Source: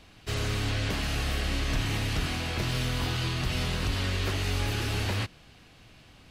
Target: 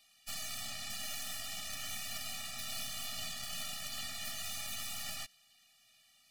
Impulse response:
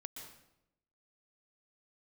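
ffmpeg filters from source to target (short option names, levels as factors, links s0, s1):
-af "aderivative,aeval=exprs='0.0398*(cos(1*acos(clip(val(0)/0.0398,-1,1)))-cos(1*PI/2))+0.000251*(cos(4*acos(clip(val(0)/0.0398,-1,1)))-cos(4*PI/2))+0.000562*(cos(5*acos(clip(val(0)/0.0398,-1,1)))-cos(5*PI/2))+0.0141*(cos(6*acos(clip(val(0)/0.0398,-1,1)))-cos(6*PI/2))+0.00398*(cos(8*acos(clip(val(0)/0.0398,-1,1)))-cos(8*PI/2))':c=same,afftfilt=real='re*eq(mod(floor(b*sr/1024/280),2),0)':imag='im*eq(mod(floor(b*sr/1024/280),2),0)':win_size=1024:overlap=0.75,volume=1.19"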